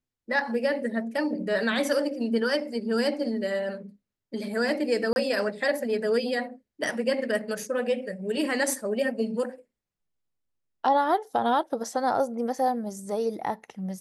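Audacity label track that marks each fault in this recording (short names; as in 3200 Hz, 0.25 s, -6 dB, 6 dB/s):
5.130000	5.160000	gap 31 ms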